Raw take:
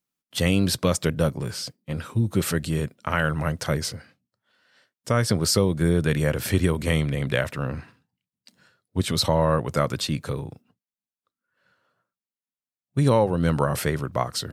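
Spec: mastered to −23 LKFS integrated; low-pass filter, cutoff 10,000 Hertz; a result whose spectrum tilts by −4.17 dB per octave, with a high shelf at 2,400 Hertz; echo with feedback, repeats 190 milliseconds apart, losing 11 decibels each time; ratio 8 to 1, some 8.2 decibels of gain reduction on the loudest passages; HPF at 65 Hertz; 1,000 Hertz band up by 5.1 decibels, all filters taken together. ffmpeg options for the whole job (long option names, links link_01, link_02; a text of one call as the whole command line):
ffmpeg -i in.wav -af "highpass=65,lowpass=10000,equalizer=frequency=1000:width_type=o:gain=5,highshelf=frequency=2400:gain=6,acompressor=threshold=-22dB:ratio=8,aecho=1:1:190|380|570:0.282|0.0789|0.0221,volume=4.5dB" out.wav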